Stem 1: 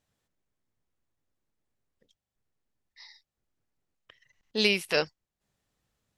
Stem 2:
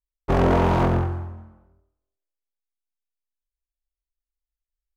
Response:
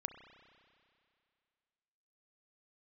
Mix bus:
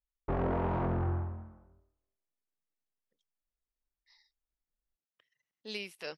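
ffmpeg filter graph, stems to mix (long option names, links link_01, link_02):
-filter_complex "[0:a]highpass=150,adelay=1100,volume=-15.5dB[link_01];[1:a]lowpass=2000,volume=-3.5dB[link_02];[link_01][link_02]amix=inputs=2:normalize=0,alimiter=level_in=0.5dB:limit=-24dB:level=0:latency=1:release=36,volume=-0.5dB"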